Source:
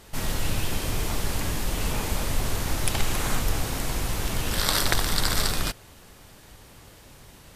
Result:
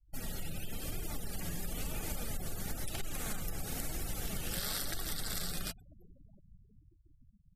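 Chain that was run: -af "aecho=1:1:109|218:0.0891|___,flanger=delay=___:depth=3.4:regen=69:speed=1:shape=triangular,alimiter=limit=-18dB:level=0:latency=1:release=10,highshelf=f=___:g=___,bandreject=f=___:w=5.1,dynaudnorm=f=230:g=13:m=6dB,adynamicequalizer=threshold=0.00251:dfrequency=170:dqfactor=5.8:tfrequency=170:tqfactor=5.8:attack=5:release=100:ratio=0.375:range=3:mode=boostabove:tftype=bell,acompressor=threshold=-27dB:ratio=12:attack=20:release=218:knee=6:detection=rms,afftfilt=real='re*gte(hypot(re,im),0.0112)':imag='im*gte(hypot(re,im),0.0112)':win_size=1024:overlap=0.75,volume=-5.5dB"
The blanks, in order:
0.0285, 2.6, 7.5k, 9, 1k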